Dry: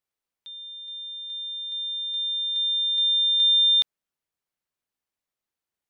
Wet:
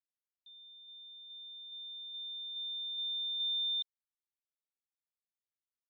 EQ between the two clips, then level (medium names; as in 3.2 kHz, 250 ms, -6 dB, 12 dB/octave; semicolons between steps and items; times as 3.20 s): band-pass filter 3.7 kHz, Q 10; distance through air 240 m; -8.0 dB